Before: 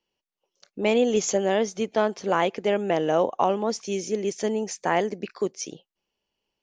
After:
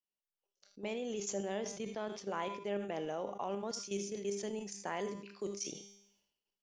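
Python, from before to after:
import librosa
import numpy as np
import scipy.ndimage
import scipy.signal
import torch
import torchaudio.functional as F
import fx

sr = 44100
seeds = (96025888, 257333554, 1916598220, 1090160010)

y = fx.high_shelf(x, sr, hz=3600.0, db=fx.steps((0.0, 3.5), (3.5, 9.0)))
y = fx.level_steps(y, sr, step_db=13)
y = fx.comb_fb(y, sr, f0_hz=200.0, decay_s=0.6, harmonics='all', damping=0.0, mix_pct=70)
y = y + 10.0 ** (-18.5 / 20.0) * np.pad(y, (int(79 * sr / 1000.0), 0))[:len(y)]
y = fx.sustainer(y, sr, db_per_s=70.0)
y = F.gain(torch.from_numpy(y), -3.0).numpy()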